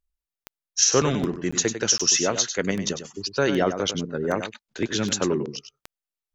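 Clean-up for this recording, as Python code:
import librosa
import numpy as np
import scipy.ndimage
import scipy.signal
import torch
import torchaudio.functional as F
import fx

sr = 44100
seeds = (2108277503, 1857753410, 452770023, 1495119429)

y = fx.fix_declick_ar(x, sr, threshold=10.0)
y = fx.fix_interpolate(y, sr, at_s=(0.44, 1.51, 1.98), length_ms=15.0)
y = fx.fix_echo_inverse(y, sr, delay_ms=99, level_db=-9.5)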